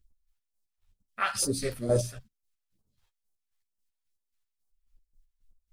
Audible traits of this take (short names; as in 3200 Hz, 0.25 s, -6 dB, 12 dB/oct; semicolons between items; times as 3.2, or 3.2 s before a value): phasing stages 2, 2.2 Hz, lowest notch 220–2300 Hz; chopped level 3.7 Hz, depth 60%, duty 40%; a shimmering, thickened sound